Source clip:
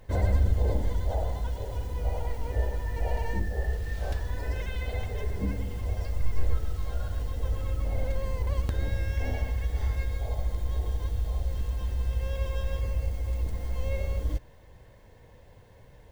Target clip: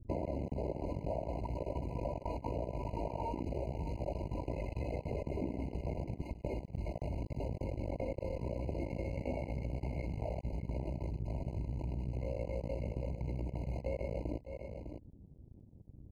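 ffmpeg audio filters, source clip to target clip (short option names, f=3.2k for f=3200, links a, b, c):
-filter_complex "[0:a]acrossover=split=250[a][b];[a]asoftclip=type=tanh:threshold=-30dB[c];[b]acrusher=bits=6:mix=0:aa=0.000001[d];[c][d]amix=inputs=2:normalize=0,aecho=1:1:3.2:0.65,aeval=exprs='max(val(0),0)':c=same,bandpass=f=300:t=q:w=0.55:csg=0,asplit=2[e][f];[f]aecho=0:1:603:0.188[g];[e][g]amix=inputs=2:normalize=0,acompressor=threshold=-44dB:ratio=6,afftfilt=real='re*eq(mod(floor(b*sr/1024/1000),2),0)':imag='im*eq(mod(floor(b*sr/1024/1000),2),0)':win_size=1024:overlap=0.75,volume=10.5dB"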